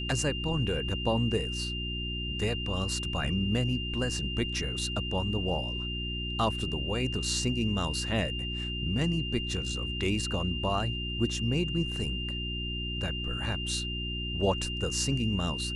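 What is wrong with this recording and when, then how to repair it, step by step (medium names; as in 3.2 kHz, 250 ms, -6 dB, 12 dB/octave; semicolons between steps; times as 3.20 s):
hum 60 Hz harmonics 6 -36 dBFS
whine 2.8 kHz -35 dBFS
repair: de-hum 60 Hz, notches 6; band-stop 2.8 kHz, Q 30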